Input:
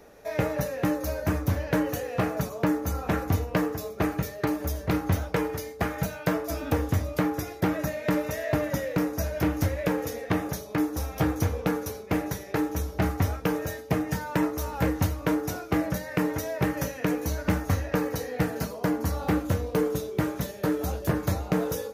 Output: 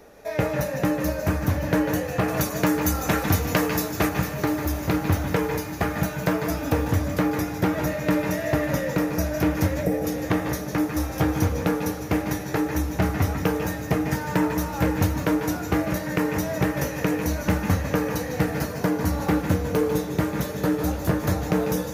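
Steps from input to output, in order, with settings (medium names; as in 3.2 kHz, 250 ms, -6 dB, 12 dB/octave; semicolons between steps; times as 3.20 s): 2.28–4.09 s: treble shelf 2.1 kHz +9.5 dB; 9.82–10.04 s: spectral selection erased 820–7300 Hz; echo that smears into a reverb 739 ms, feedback 67%, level -14 dB; on a send at -5 dB: reverberation RT60 0.45 s, pre-delay 145 ms; on the sum: trim +2.5 dB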